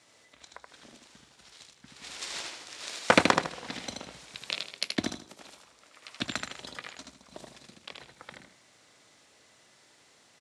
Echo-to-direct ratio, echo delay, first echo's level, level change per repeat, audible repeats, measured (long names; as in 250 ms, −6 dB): −3.5 dB, 78 ms, −4.0 dB, −11.0 dB, 3